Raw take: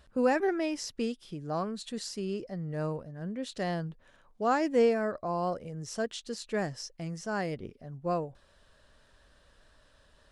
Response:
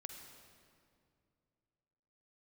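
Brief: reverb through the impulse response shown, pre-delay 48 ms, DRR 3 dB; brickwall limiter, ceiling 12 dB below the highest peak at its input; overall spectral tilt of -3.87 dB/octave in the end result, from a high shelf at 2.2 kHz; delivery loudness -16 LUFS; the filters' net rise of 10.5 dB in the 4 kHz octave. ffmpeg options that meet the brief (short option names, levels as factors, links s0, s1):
-filter_complex "[0:a]highshelf=f=2200:g=8.5,equalizer=f=4000:t=o:g=5,alimiter=level_in=1.12:limit=0.0631:level=0:latency=1,volume=0.891,asplit=2[s0][s1];[1:a]atrim=start_sample=2205,adelay=48[s2];[s1][s2]afir=irnorm=-1:irlink=0,volume=1.12[s3];[s0][s3]amix=inputs=2:normalize=0,volume=7.08"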